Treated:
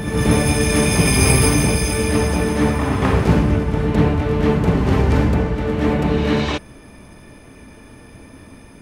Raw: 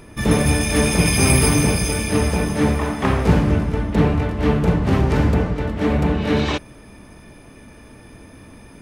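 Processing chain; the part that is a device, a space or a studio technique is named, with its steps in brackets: reverse reverb (reverse; reverberation RT60 1.1 s, pre-delay 93 ms, DRR 5.5 dB; reverse)

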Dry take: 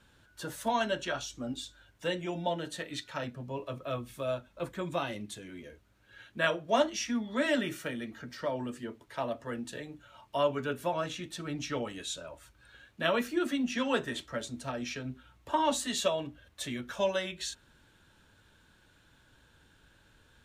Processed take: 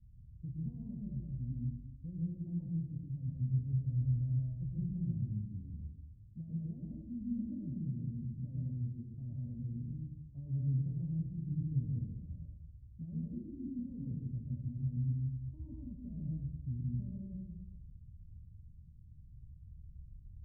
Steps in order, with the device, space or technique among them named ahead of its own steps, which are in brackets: club heard from the street (peak limiter -23 dBFS, peak gain reduction 10 dB; low-pass 130 Hz 24 dB/octave; reverberation RT60 1.0 s, pre-delay 106 ms, DRR -3.5 dB); trim +10 dB

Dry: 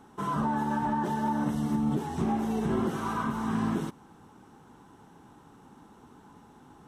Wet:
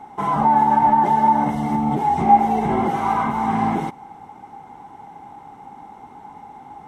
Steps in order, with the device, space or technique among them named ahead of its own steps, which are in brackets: inside a helmet (treble shelf 4.5 kHz -5 dB; small resonant body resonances 800/2100 Hz, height 18 dB, ringing for 25 ms); trim +5 dB

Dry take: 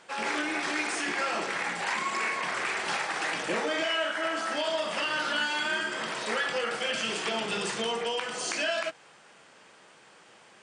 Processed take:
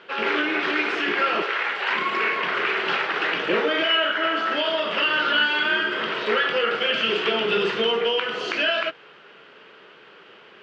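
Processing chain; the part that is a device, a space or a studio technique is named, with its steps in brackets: 1.42–1.90 s: high-pass 520 Hz 12 dB/octave; guitar cabinet (cabinet simulation 110–3900 Hz, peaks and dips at 410 Hz +10 dB, 790 Hz -5 dB, 1.4 kHz +5 dB, 2.9 kHz +6 dB); trim +5 dB

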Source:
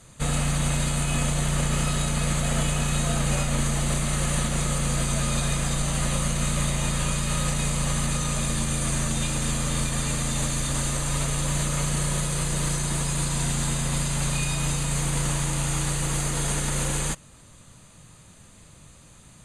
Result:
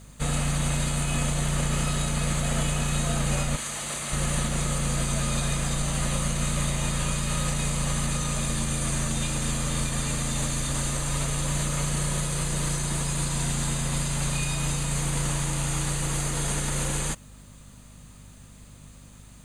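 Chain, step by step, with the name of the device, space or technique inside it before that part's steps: 3.55–4.11 s: high-pass 1.3 kHz -> 550 Hz 6 dB/octave; video cassette with head-switching buzz (mains buzz 50 Hz, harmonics 5, -48 dBFS -4 dB/octave; white noise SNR 39 dB); trim -1.5 dB

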